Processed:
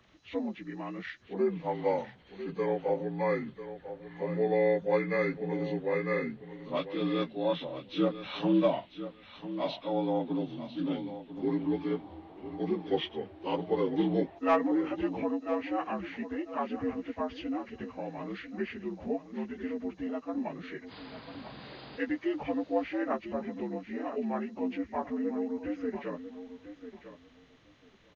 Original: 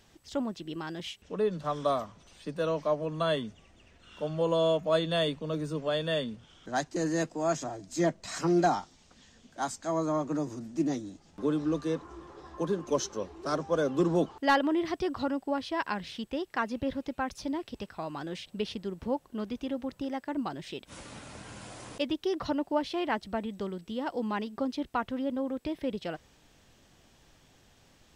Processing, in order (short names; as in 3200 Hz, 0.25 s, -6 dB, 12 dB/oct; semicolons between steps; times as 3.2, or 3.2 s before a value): inharmonic rescaling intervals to 80%; on a send: feedback echo 0.996 s, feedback 16%, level -12 dB